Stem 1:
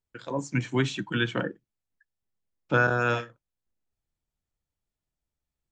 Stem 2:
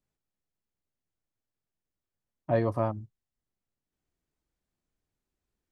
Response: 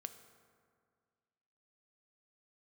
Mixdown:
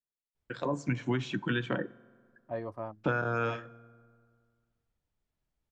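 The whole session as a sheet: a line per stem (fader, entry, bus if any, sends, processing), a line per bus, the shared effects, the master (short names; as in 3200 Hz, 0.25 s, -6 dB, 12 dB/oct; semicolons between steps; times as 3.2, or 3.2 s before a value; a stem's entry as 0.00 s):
+1.5 dB, 0.35 s, send -5 dB, vibrato 0.91 Hz 59 cents; compressor 4:1, threshold -32 dBFS, peak gain reduction 12.5 dB
-8.5 dB, 0.00 s, no send, gate -31 dBFS, range -8 dB; low shelf 220 Hz -9 dB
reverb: on, RT60 2.0 s, pre-delay 3 ms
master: LPF 2800 Hz 6 dB/oct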